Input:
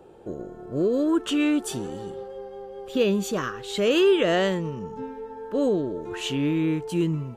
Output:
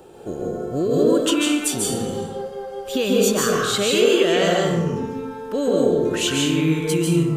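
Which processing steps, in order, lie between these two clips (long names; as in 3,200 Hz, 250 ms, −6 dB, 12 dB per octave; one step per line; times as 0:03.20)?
high-shelf EQ 3,400 Hz +12 dB
downward compressor, threshold −23 dBFS, peak gain reduction 8.5 dB
convolution reverb RT60 0.95 s, pre-delay 136 ms, DRR −2.5 dB
level +4 dB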